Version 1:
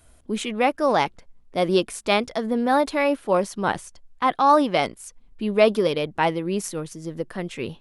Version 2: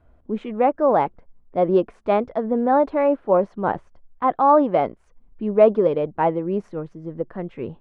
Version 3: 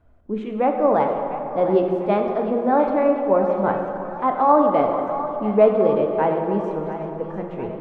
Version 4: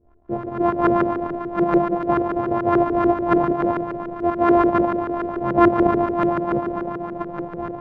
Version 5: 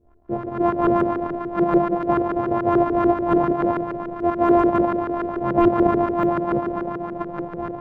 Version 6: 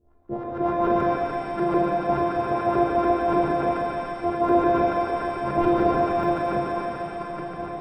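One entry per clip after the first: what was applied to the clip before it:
low-pass filter 1,200 Hz 12 dB per octave; dynamic equaliser 580 Hz, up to +4 dB, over −29 dBFS, Q 0.85
echo with a time of its own for lows and highs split 640 Hz, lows 190 ms, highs 698 ms, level −11 dB; dense smooth reverb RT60 2.9 s, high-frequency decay 0.55×, pre-delay 0 ms, DRR 3 dB; level −1.5 dB
samples sorted by size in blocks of 128 samples; auto-filter low-pass saw up 6.9 Hz 380–1,500 Hz; level −2.5 dB
de-essing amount 95%
reverb with rising layers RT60 2 s, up +7 semitones, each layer −8 dB, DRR 1 dB; level −5 dB

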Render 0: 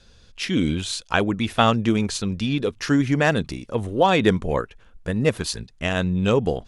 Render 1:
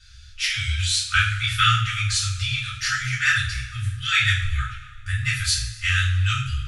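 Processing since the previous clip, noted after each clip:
brick-wall band-stop 130–1,200 Hz
coupled-rooms reverb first 0.44 s, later 1.8 s, from −17 dB, DRR −9 dB
level −3 dB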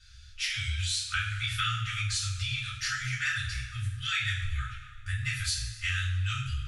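downward compressor 3 to 1, threshold −22 dBFS, peak gain reduction 7 dB
dynamic equaliser 690 Hz, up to −5 dB, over −46 dBFS, Q 1.1
level −5.5 dB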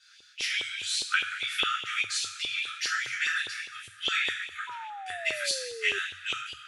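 auto-filter high-pass saw up 4.9 Hz 400–3,300 Hz
sound drawn into the spectrogram fall, 0:04.67–0:05.99, 390–1,000 Hz −40 dBFS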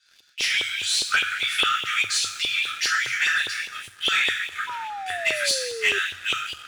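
leveller curve on the samples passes 2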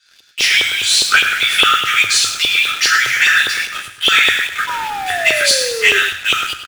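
in parallel at −9.5 dB: bit reduction 5 bits
on the sum: single-tap delay 104 ms −10.5 dB
level +7.5 dB

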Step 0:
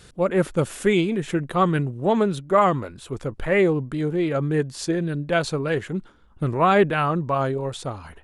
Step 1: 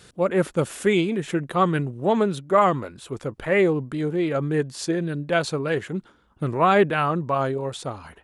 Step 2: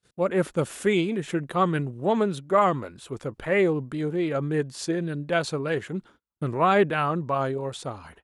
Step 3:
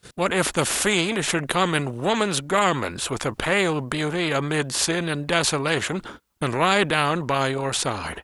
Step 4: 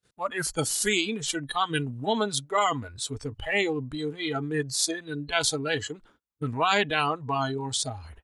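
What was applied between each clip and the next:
high-pass filter 120 Hz 6 dB per octave
noise gate −48 dBFS, range −33 dB; level −2.5 dB
every bin compressed towards the loudest bin 2 to 1; level +4.5 dB
noise reduction from a noise print of the clip's start 21 dB; level −2.5 dB

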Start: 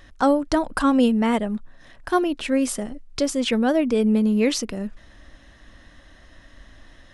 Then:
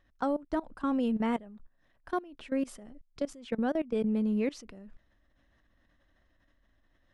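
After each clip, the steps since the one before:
high-shelf EQ 4,100 Hz −10.5 dB
output level in coarse steps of 20 dB
level −8 dB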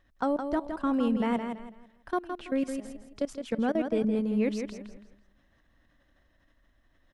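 repeating echo 165 ms, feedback 30%, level −7 dB
level +2 dB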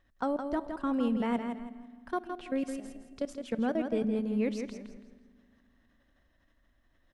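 convolution reverb RT60 2.1 s, pre-delay 4 ms, DRR 17.5 dB
level −3 dB

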